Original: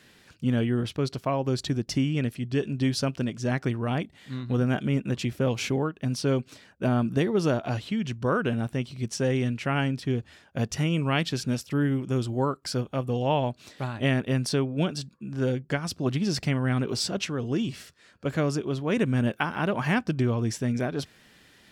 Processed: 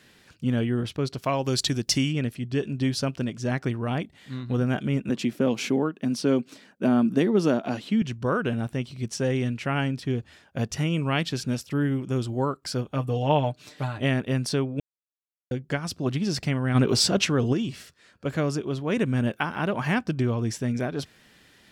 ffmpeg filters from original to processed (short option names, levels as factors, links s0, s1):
-filter_complex "[0:a]asplit=3[s0][s1][s2];[s0]afade=t=out:st=1.22:d=0.02[s3];[s1]highshelf=f=2100:g=12,afade=t=in:st=1.22:d=0.02,afade=t=out:st=2.11:d=0.02[s4];[s2]afade=t=in:st=2.11:d=0.02[s5];[s3][s4][s5]amix=inputs=3:normalize=0,asettb=1/sr,asplit=3[s6][s7][s8];[s6]atrim=end=5.094[s9];[s7]atrim=start=5.09:end=8.02,asetpts=PTS-STARTPTS,afade=t=in:d=0.004:c=qsin,afade=t=out:st=2.926:d=0.004:c=qsin,highpass=f=220:t=q:w=1.9[s10];[s8]atrim=start=8.016[s11];[s9][s10]acrossfade=d=0.004:c1=hsin:c2=qsin[s12];[s12][s11]acrossfade=d=0.004:c1=qsin:c2=hsin,asettb=1/sr,asplit=3[s13][s14][s15];[s13]atrim=end=12.934[s16];[s14]atrim=start=12.93:end=13.98,asetpts=PTS-STARTPTS,afade=t=in:d=0.004:c=qsin,afade=t=out:st=1.046:d=0.004:c=qsin,aecho=1:1:6.7:0.58,atrim=end_sample=46305[s17];[s15]atrim=start=13.976[s18];[s16][s17]acrossfade=d=0.004:c1=hsin:c2=qsin[s19];[s19][s18]acrossfade=d=0.004:c1=qsin:c2=hsin,asplit=3[s20][s21][s22];[s20]afade=t=out:st=16.74:d=0.02[s23];[s21]acontrast=88,afade=t=in:st=16.74:d=0.02,afade=t=out:st=17.52:d=0.02[s24];[s22]afade=t=in:st=17.52:d=0.02[s25];[s23][s24][s25]amix=inputs=3:normalize=0,asplit=3[s26][s27][s28];[s26]atrim=end=14.8,asetpts=PTS-STARTPTS,afade=t=out:st=14.796:d=0.004:c=hsin[s29];[s27]atrim=start=14.8:end=15.51,asetpts=PTS-STARTPTS,volume=0[s30];[s28]atrim=start=15.51,asetpts=PTS-STARTPTS,afade=t=in:d=0.004:c=hsin[s31];[s29][s30][s31]concat=n=3:v=0:a=1"